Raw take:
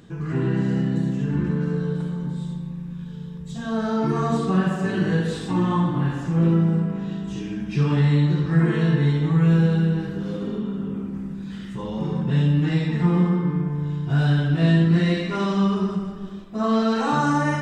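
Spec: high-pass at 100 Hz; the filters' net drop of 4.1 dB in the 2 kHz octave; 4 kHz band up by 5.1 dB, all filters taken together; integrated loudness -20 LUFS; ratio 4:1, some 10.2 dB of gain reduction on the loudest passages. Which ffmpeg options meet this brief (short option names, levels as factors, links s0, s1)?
-af "highpass=100,equalizer=f=2000:t=o:g=-7.5,equalizer=f=4000:t=o:g=8.5,acompressor=threshold=0.0447:ratio=4,volume=3.16"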